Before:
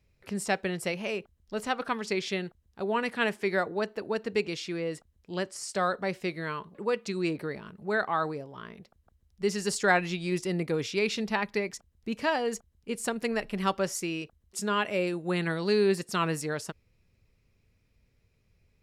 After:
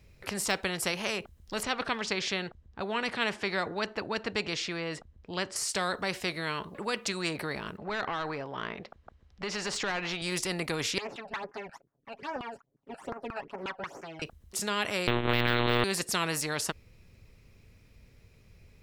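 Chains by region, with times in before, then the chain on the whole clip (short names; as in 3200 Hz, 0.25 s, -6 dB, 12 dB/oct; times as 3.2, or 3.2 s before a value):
1.63–5.56 air absorption 84 m + mismatched tape noise reduction decoder only
7.77–10.22 LPF 5400 Hz + compressor 2.5:1, threshold -32 dBFS + overdrive pedal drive 12 dB, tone 1600 Hz, clips at -21 dBFS
10.98–14.22 minimum comb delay 7.2 ms + LFO band-pass saw down 5.6 Hz 310–1600 Hz + phaser stages 12, 2.4 Hz, lowest notch 340–3900 Hz
15.07–15.84 sample leveller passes 5 + monotone LPC vocoder at 8 kHz 120 Hz
whole clip: de-esser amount 70%; spectral compressor 2:1; gain -3.5 dB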